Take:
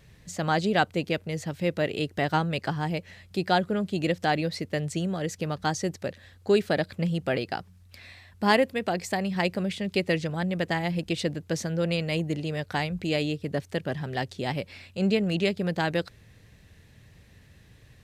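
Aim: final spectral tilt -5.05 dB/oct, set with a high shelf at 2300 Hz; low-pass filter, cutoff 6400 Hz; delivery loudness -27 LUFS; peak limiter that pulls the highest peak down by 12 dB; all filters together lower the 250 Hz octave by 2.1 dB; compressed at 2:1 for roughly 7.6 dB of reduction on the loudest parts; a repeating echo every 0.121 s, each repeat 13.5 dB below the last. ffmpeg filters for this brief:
-af "lowpass=6.4k,equalizer=f=250:t=o:g=-3.5,highshelf=f=2.3k:g=4,acompressor=threshold=-31dB:ratio=2,alimiter=level_in=1.5dB:limit=-24dB:level=0:latency=1,volume=-1.5dB,aecho=1:1:121|242:0.211|0.0444,volume=9dB"

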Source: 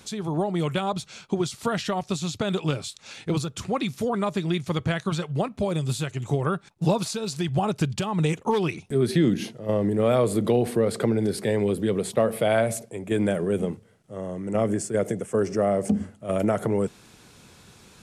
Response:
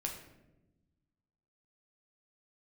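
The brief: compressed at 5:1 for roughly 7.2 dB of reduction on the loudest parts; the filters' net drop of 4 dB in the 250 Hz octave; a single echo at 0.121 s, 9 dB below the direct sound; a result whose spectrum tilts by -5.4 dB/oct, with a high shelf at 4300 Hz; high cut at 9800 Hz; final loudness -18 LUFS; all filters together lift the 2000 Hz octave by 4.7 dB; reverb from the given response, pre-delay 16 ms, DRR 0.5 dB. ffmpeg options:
-filter_complex "[0:a]lowpass=9.8k,equalizer=f=250:t=o:g=-6,equalizer=f=2k:t=o:g=8,highshelf=f=4.3k:g=-8.5,acompressor=threshold=-25dB:ratio=5,aecho=1:1:121:0.355,asplit=2[a][b];[1:a]atrim=start_sample=2205,adelay=16[c];[b][c]afir=irnorm=-1:irlink=0,volume=-1dB[d];[a][d]amix=inputs=2:normalize=0,volume=9.5dB"

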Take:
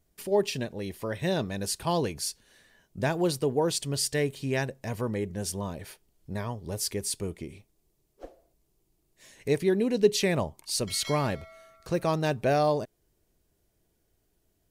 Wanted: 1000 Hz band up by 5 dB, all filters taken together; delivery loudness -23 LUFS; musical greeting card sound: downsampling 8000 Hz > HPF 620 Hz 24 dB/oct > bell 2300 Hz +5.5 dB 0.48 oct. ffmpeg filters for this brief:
-af "equalizer=f=1k:t=o:g=7,aresample=8000,aresample=44100,highpass=f=620:w=0.5412,highpass=f=620:w=1.3066,equalizer=f=2.3k:t=o:w=0.48:g=5.5,volume=8.5dB"

